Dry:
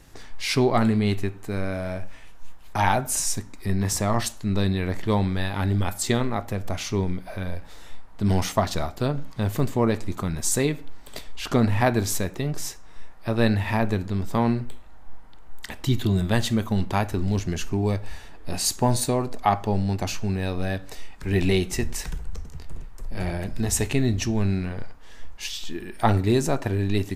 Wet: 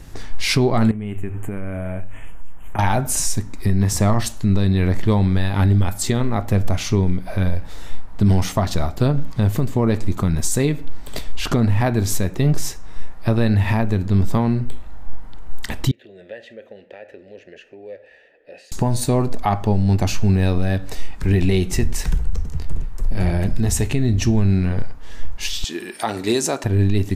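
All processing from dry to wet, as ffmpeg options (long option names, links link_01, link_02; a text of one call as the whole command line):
ffmpeg -i in.wav -filter_complex "[0:a]asettb=1/sr,asplit=3[link_01][link_02][link_03];[link_01]atrim=end=0.914[link_04];[link_02]atrim=start=0.91:end=2.79,asetpts=PTS-STARTPTS,afade=type=in:duration=0.004:curve=qsin,afade=type=out:start_time=1.876:duration=0.004:curve=qsin,bandreject=frequency=50:width_type=h:width=6,bandreject=frequency=100:width_type=h:width=6,acompressor=threshold=-33dB:ratio=6:attack=3.2:release=140:knee=1:detection=peak,asuperstop=centerf=4700:order=8:qfactor=1.3[link_05];[link_03]atrim=start=2.786[link_06];[link_04][link_05]acrossfade=duration=0.004:curve1=hsin:curve2=qsin[link_07];[link_07][link_06]acrossfade=duration=0.004:curve1=qsin:curve2=hsin,asettb=1/sr,asplit=3[link_08][link_09][link_10];[link_08]atrim=end=15.914[link_11];[link_09]atrim=start=15.91:end=18.72,asetpts=PTS-STARTPTS,afade=type=in:duration=0.004:curve=qsin,afade=type=out:start_time=2.806:duration=0.004:curve=qsin,bass=frequency=250:gain=-12,treble=frequency=4000:gain=-4,acompressor=threshold=-31dB:ratio=2.5:attack=3.2:release=140:knee=1:detection=peak,asplit=3[link_12][link_13][link_14];[link_12]bandpass=frequency=530:width_type=q:width=8,volume=0dB[link_15];[link_13]bandpass=frequency=1840:width_type=q:width=8,volume=-6dB[link_16];[link_14]bandpass=frequency=2480:width_type=q:width=8,volume=-9dB[link_17];[link_15][link_16][link_17]amix=inputs=3:normalize=0[link_18];[link_10]atrim=start=18.716[link_19];[link_11][link_18]acrossfade=duration=0.004:curve1=hsin:curve2=qsin[link_20];[link_20][link_19]acrossfade=duration=0.004:curve1=qsin:curve2=hsin,asettb=1/sr,asplit=3[link_21][link_22][link_23];[link_21]atrim=end=25.644[link_24];[link_22]atrim=start=25.64:end=26.64,asetpts=PTS-STARTPTS,afade=type=in:duration=0.004:curve=qsin,afade=type=out:start_time=0.996:duration=0.004:curve=qsin,highpass=330,lowpass=7100,aemphasis=mode=production:type=75fm[link_25];[link_23]atrim=start=26.636[link_26];[link_24][link_25]acrossfade=duration=0.004:curve1=hsin:curve2=qsin[link_27];[link_27][link_26]acrossfade=duration=0.004:curve1=qsin:curve2=hsin,lowshelf=frequency=250:gain=8,alimiter=limit=-14.5dB:level=0:latency=1:release=305,volume=6dB" out.wav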